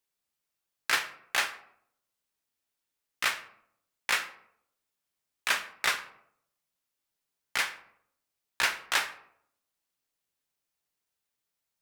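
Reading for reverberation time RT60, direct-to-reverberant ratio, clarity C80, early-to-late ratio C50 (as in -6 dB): 0.70 s, 7.5 dB, 16.5 dB, 13.5 dB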